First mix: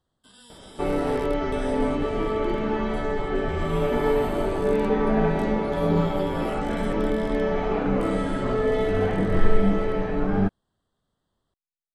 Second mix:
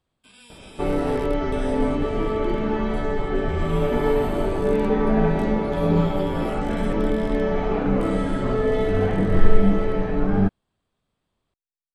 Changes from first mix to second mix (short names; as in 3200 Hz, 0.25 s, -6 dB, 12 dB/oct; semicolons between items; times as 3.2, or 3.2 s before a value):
first sound: remove Butterworth band-stop 2400 Hz, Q 2.4; second sound: add low shelf 260 Hz +4.5 dB